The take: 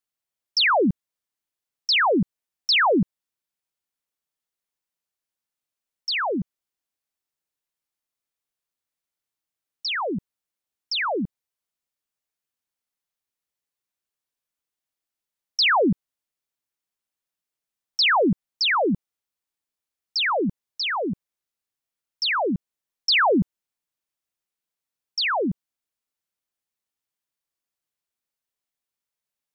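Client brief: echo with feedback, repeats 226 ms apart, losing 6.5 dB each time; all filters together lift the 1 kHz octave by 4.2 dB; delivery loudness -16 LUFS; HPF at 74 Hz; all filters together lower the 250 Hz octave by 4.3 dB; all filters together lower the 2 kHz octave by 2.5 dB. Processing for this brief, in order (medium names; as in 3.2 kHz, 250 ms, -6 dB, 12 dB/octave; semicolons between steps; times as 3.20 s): high-pass 74 Hz; peaking EQ 250 Hz -6 dB; peaking EQ 1 kHz +7 dB; peaking EQ 2 kHz -5.5 dB; feedback delay 226 ms, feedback 47%, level -6.5 dB; trim +6.5 dB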